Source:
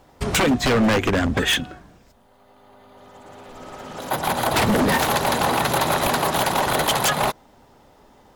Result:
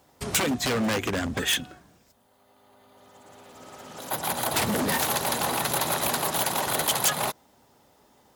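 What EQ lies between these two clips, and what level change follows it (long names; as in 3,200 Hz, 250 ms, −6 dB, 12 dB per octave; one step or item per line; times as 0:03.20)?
high-pass filter 72 Hz
high-shelf EQ 4,900 Hz +11 dB
−8.0 dB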